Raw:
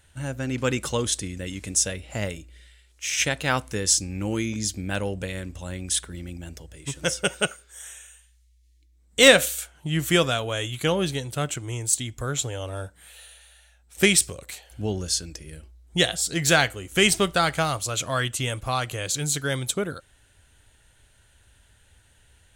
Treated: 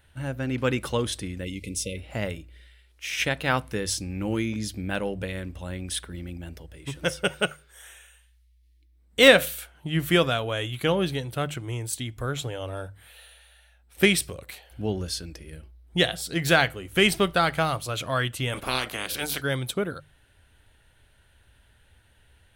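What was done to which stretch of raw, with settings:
1.44–1.97 spectral delete 560–2000 Hz
18.52–19.4 spectral limiter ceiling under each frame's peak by 23 dB
whole clip: bell 7100 Hz -13.5 dB 0.82 oct; notches 50/100/150 Hz

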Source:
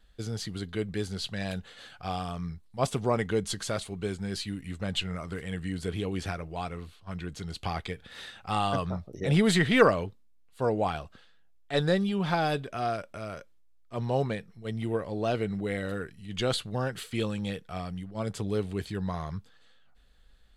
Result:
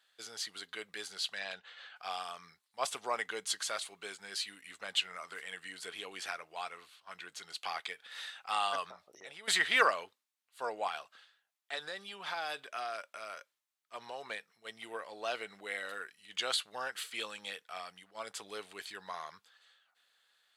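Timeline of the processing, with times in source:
1.39–1.95 LPF 5600 Hz -> 2800 Hz
8.91–9.48 compressor 16:1, threshold -34 dBFS
10.87–14.3 compressor, threshold -28 dBFS
whole clip: HPF 1000 Hz 12 dB/oct

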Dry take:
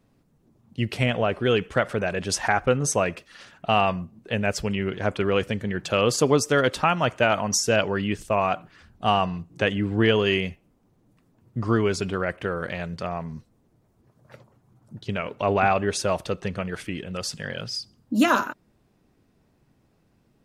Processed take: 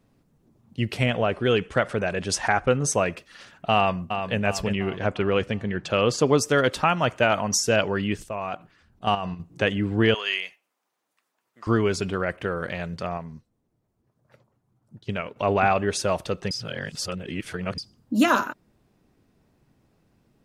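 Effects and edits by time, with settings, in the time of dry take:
1.2–2.92 careless resampling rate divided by 2×, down none, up filtered
3.75–4.38 echo throw 0.35 s, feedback 50%, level -7 dB
4.97–6.33 air absorption 60 m
8.24–9.4 level quantiser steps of 10 dB
10.14–11.67 HPF 1100 Hz
13.17–15.36 upward expander, over -45 dBFS
16.51–17.78 reverse

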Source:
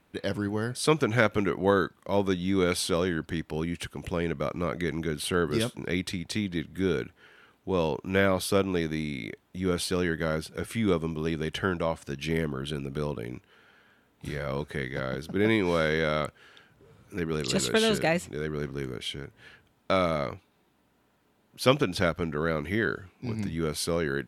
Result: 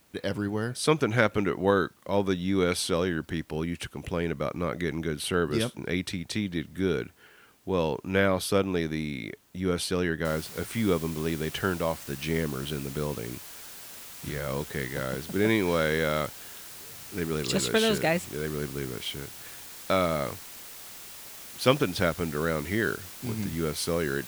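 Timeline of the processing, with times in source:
10.25 noise floor step -65 dB -44 dB

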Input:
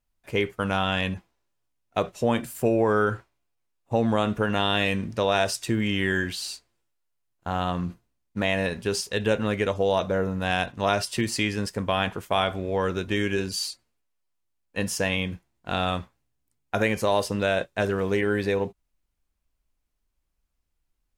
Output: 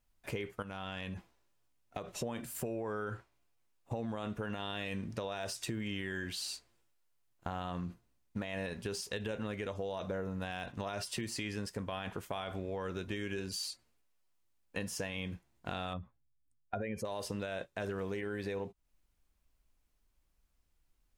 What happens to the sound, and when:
0.62–2.22 compressor 5:1, threshold -35 dBFS
15.93–17.05 spectral contrast raised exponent 1.7
whole clip: de-esser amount 55%; limiter -17.5 dBFS; compressor 4:1, threshold -40 dBFS; gain +2 dB

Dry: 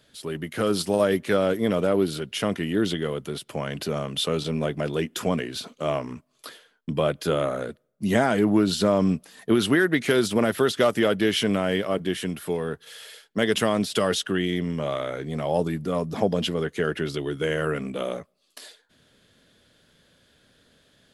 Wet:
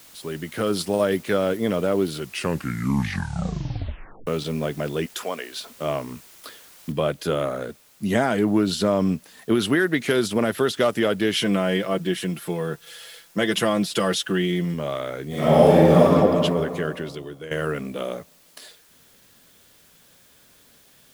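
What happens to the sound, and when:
2.16 tape stop 2.11 s
5.06–5.69 HPF 510 Hz
6.92 noise floor step -49 dB -56 dB
11.33–14.74 comb 5.9 ms
15.27–16.05 reverb throw, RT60 2.7 s, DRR -11.5 dB
16.59–17.51 fade out, to -12.5 dB

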